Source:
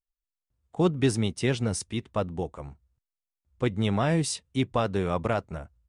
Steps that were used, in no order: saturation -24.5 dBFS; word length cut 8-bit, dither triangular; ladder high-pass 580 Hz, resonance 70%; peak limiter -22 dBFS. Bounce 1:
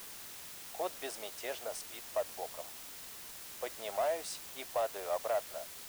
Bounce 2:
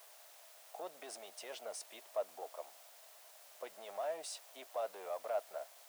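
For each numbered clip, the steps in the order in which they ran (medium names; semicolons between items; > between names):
ladder high-pass > peak limiter > saturation > word length cut; peak limiter > word length cut > saturation > ladder high-pass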